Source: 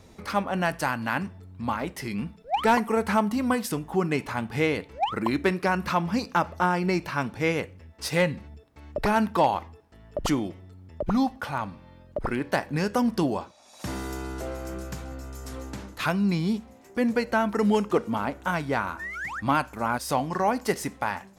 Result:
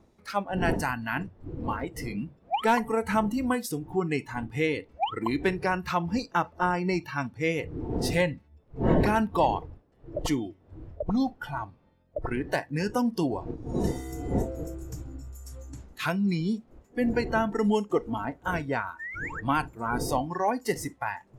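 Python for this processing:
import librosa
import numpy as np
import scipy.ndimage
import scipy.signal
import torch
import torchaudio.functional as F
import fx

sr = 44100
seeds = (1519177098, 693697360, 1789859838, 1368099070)

y = fx.dmg_wind(x, sr, seeds[0], corner_hz=400.0, level_db=-34.0)
y = fx.noise_reduce_blind(y, sr, reduce_db=15)
y = y * 10.0 ** (-2.0 / 20.0)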